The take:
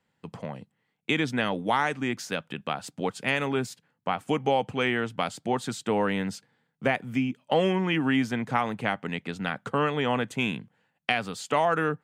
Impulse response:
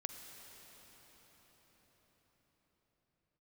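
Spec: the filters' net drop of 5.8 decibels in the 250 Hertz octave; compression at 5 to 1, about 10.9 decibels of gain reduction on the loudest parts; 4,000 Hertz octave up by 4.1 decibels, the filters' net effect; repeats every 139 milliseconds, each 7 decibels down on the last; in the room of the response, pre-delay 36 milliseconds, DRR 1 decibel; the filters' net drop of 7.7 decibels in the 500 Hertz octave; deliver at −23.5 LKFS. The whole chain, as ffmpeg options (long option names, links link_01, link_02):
-filter_complex "[0:a]equalizer=frequency=250:width_type=o:gain=-5,equalizer=frequency=500:width_type=o:gain=-8.5,equalizer=frequency=4000:width_type=o:gain=6,acompressor=threshold=-34dB:ratio=5,aecho=1:1:139|278|417|556|695:0.447|0.201|0.0905|0.0407|0.0183,asplit=2[link_01][link_02];[1:a]atrim=start_sample=2205,adelay=36[link_03];[link_02][link_03]afir=irnorm=-1:irlink=0,volume=1dB[link_04];[link_01][link_04]amix=inputs=2:normalize=0,volume=11.5dB"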